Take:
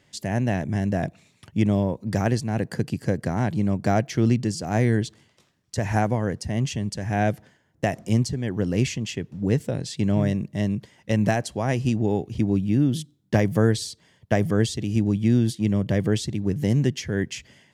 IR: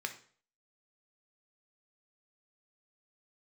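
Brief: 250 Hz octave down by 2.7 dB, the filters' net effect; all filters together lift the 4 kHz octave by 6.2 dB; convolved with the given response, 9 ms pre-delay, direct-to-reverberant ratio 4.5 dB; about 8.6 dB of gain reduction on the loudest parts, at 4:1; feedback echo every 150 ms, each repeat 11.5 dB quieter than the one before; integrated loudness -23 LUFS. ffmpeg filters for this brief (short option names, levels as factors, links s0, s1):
-filter_complex "[0:a]equalizer=f=250:t=o:g=-3.5,equalizer=f=4000:t=o:g=8,acompressor=threshold=0.0501:ratio=4,aecho=1:1:150|300|450:0.266|0.0718|0.0194,asplit=2[s0][s1];[1:a]atrim=start_sample=2205,adelay=9[s2];[s1][s2]afir=irnorm=-1:irlink=0,volume=0.473[s3];[s0][s3]amix=inputs=2:normalize=0,volume=2.24"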